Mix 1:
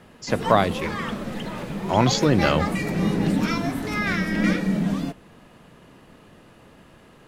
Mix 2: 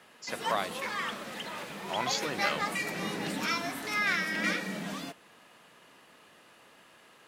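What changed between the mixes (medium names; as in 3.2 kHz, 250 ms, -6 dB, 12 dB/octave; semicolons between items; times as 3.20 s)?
speech -7.0 dB; master: add high-pass 1.3 kHz 6 dB/octave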